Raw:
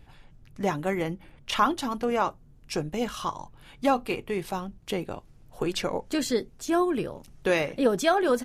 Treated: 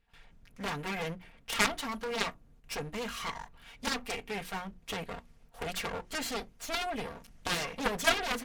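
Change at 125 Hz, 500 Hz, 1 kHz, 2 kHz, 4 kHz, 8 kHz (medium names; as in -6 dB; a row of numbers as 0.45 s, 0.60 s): -7.0 dB, -11.0 dB, -8.0 dB, -0.5 dB, 0.0 dB, 0.0 dB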